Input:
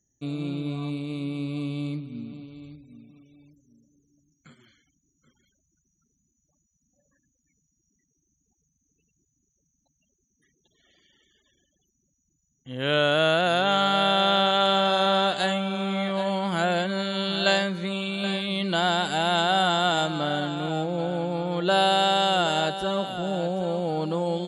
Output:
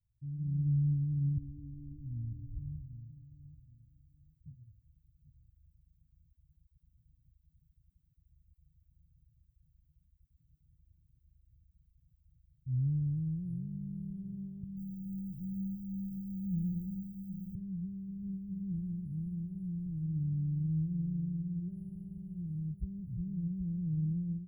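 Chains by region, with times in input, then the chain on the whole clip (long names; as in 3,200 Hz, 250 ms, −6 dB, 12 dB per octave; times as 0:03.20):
0:01.37–0:02.58: low-shelf EQ 210 Hz +11.5 dB + downward compressor 2 to 1, threshold −29 dBFS + phaser with its sweep stopped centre 760 Hz, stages 8
0:14.63–0:17.55: Chebyshev band-stop filter 350–1,700 Hz, order 5 + feedback echo at a low word length 140 ms, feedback 35%, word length 9 bits, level −10 dB
whole clip: automatic gain control gain up to 12 dB; inverse Chebyshev band-stop filter 630–7,100 Hz, stop band 80 dB; parametric band 220 Hz −8 dB 0.33 octaves; level +3 dB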